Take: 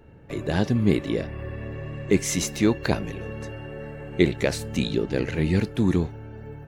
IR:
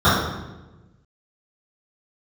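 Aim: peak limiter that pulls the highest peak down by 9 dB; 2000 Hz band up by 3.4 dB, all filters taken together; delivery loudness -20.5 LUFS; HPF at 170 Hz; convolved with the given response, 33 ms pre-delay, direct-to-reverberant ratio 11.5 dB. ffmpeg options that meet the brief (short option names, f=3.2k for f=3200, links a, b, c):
-filter_complex "[0:a]highpass=170,equalizer=f=2k:t=o:g=4,alimiter=limit=-14dB:level=0:latency=1,asplit=2[a][b];[1:a]atrim=start_sample=2205,adelay=33[c];[b][c]afir=irnorm=-1:irlink=0,volume=-37dB[d];[a][d]amix=inputs=2:normalize=0,volume=8dB"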